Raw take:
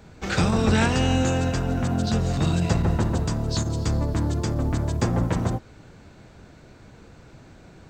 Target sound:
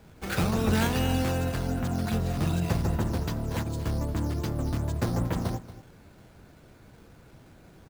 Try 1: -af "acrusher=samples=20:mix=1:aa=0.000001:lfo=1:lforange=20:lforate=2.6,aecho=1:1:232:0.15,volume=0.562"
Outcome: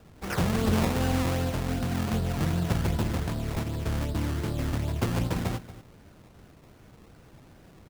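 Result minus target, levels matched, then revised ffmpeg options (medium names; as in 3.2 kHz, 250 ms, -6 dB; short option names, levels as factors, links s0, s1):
decimation with a swept rate: distortion +7 dB
-af "acrusher=samples=6:mix=1:aa=0.000001:lfo=1:lforange=6:lforate=2.6,aecho=1:1:232:0.15,volume=0.562"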